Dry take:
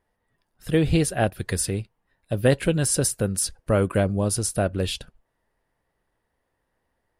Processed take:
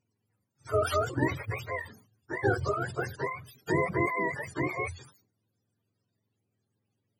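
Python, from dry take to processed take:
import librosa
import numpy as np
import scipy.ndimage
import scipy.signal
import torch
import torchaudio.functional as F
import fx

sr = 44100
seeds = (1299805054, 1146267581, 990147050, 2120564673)

y = fx.octave_mirror(x, sr, pivot_hz=450.0)
y = fx.sustainer(y, sr, db_per_s=110.0)
y = y * 10.0 ** (-5.0 / 20.0)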